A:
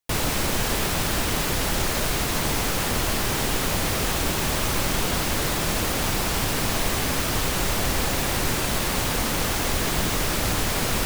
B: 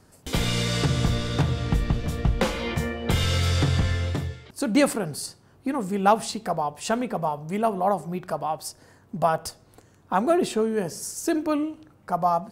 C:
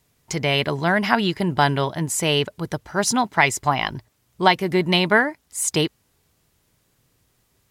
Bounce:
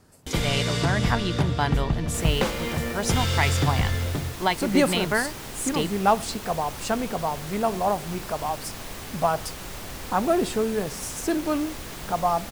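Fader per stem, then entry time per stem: −13.0, −1.0, −7.5 decibels; 2.05, 0.00, 0.00 seconds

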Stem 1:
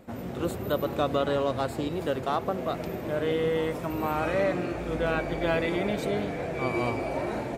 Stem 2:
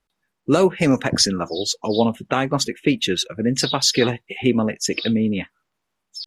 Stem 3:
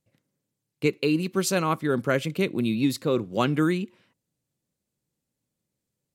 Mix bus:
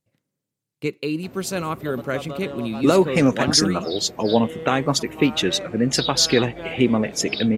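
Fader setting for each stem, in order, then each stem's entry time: −7.5, 0.0, −2.0 decibels; 1.15, 2.35, 0.00 seconds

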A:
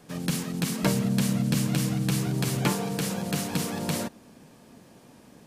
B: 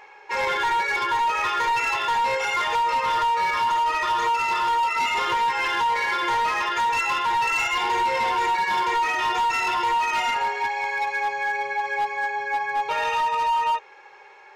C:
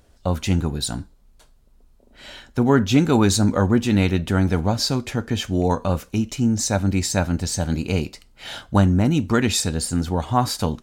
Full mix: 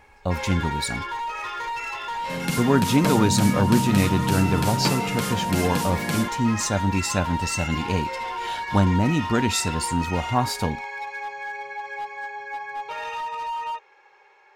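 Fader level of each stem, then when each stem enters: +1.0, −7.5, −3.0 decibels; 2.20, 0.00, 0.00 seconds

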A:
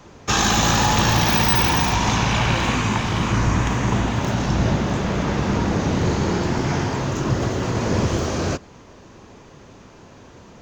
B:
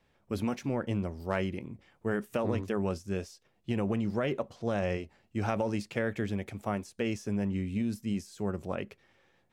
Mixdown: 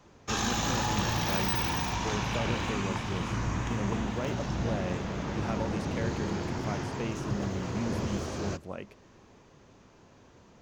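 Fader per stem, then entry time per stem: −12.0, −5.0 decibels; 0.00, 0.00 seconds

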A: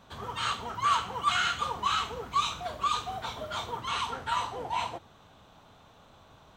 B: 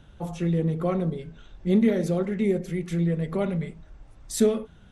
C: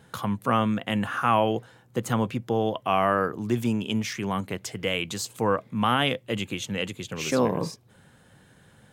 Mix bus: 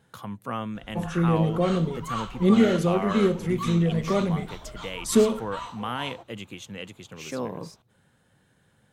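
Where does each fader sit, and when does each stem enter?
−7.0, +2.0, −8.5 decibels; 1.25, 0.75, 0.00 seconds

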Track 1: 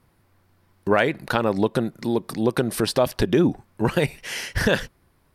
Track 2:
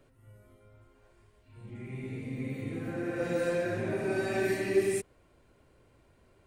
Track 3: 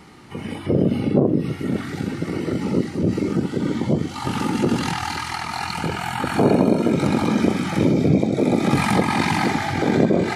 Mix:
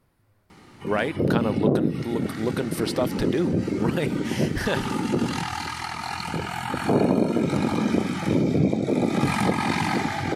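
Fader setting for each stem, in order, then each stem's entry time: −5.5, −12.5, −4.0 decibels; 0.00, 0.00, 0.50 seconds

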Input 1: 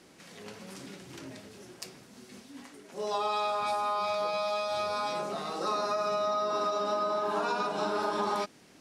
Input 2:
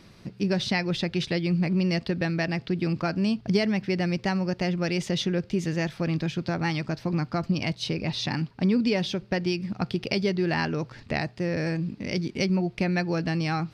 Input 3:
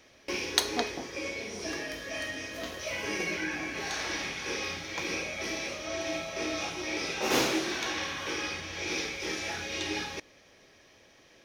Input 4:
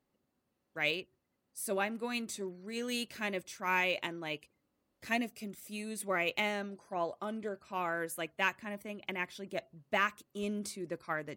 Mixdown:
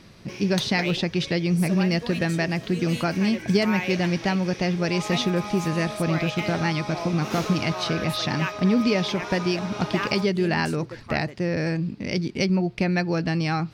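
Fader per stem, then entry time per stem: −5.0, +2.5, −7.0, +0.5 decibels; 1.80, 0.00, 0.00, 0.00 seconds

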